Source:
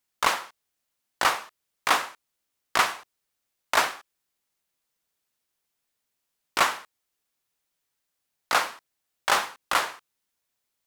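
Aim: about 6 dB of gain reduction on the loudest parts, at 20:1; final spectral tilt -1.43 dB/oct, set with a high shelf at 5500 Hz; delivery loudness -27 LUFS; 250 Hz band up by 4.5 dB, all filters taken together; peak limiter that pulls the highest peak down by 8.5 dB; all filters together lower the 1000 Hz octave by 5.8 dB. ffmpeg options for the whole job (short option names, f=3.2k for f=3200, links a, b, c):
-af "equalizer=f=250:t=o:g=6.5,equalizer=f=1k:t=o:g=-8,highshelf=f=5.5k:g=3.5,acompressor=threshold=-24dB:ratio=20,volume=8dB,alimiter=limit=-9.5dB:level=0:latency=1"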